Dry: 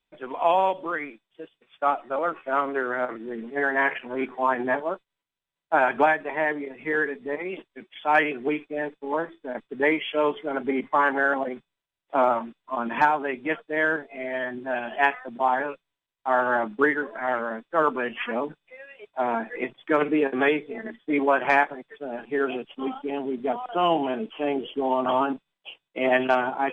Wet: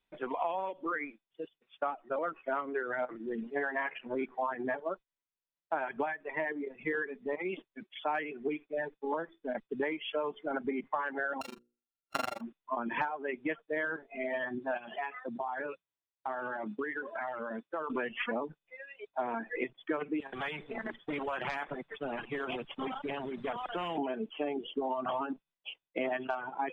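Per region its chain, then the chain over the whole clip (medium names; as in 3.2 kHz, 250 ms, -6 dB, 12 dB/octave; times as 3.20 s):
11.41–12.41 s: sorted samples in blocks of 32 samples + AM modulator 24 Hz, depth 100% + hum notches 60/120/180/240/300/360/420/480/540 Hz
14.77–17.90 s: compression 8:1, threshold -30 dBFS + high-pass 53 Hz
20.20–23.98 s: compression 3:1, threshold -27 dBFS + treble shelf 2 kHz -8.5 dB + spectrum-flattening compressor 2:1
whole clip: low-pass 3.6 kHz 6 dB/octave; reverb removal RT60 1.9 s; compression 10:1, threshold -30 dBFS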